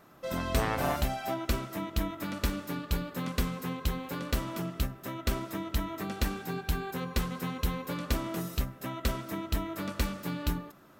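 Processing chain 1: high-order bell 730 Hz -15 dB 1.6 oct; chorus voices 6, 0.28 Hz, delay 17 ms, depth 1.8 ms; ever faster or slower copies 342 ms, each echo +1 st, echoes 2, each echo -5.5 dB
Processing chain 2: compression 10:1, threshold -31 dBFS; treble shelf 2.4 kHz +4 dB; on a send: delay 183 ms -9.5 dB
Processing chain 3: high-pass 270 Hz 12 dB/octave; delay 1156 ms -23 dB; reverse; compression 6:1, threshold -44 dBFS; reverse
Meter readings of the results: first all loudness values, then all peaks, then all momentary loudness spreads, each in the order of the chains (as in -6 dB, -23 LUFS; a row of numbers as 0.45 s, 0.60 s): -34.5 LUFS, -36.5 LUFS, -47.0 LUFS; -15.0 dBFS, -16.5 dBFS, -30.5 dBFS; 4 LU, 2 LU, 2 LU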